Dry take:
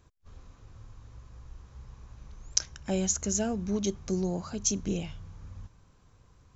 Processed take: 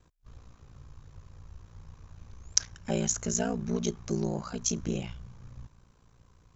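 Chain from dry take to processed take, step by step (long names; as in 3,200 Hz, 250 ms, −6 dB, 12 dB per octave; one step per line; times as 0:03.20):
ring modulation 29 Hz
dynamic equaliser 1,400 Hz, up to +4 dB, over −52 dBFS, Q 0.83
level +2 dB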